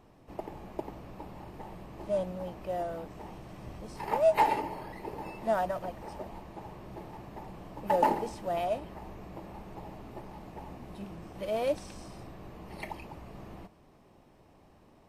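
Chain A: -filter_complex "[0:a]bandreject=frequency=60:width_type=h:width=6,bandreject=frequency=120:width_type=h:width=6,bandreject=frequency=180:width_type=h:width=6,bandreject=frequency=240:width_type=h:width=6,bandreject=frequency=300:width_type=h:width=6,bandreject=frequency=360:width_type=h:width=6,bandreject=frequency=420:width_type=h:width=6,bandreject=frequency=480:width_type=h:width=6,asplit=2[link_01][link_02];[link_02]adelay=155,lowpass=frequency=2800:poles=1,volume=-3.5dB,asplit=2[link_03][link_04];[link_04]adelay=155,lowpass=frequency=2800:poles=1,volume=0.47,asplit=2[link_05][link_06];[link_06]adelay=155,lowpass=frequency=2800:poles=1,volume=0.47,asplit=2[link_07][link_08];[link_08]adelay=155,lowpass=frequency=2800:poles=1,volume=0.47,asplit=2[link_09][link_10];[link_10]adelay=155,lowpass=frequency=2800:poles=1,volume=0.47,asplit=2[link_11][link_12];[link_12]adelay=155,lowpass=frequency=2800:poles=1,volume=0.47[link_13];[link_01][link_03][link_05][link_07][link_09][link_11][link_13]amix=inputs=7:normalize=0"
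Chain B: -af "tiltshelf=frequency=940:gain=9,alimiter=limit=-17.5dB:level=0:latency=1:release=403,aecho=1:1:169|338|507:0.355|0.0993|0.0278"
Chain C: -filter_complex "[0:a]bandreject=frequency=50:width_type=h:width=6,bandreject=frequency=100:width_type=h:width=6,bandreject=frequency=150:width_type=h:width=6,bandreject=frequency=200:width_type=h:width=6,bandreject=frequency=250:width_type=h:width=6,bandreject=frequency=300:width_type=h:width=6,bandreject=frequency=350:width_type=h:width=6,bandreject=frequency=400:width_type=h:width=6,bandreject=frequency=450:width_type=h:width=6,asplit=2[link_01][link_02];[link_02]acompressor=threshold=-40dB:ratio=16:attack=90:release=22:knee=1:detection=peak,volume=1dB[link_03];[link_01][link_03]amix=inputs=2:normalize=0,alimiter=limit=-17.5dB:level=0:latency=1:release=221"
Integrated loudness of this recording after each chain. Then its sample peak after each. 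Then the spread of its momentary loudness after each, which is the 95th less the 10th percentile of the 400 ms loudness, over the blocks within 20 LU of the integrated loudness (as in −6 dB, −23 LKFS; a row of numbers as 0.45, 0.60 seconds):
−31.5, −33.5, −33.0 LKFS; −10.0, −15.5, −17.5 dBFS; 19, 11, 13 LU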